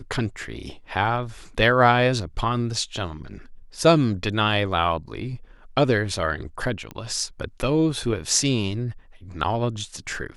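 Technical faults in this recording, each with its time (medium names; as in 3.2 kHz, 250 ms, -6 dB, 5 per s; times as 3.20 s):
6.91 s: pop -20 dBFS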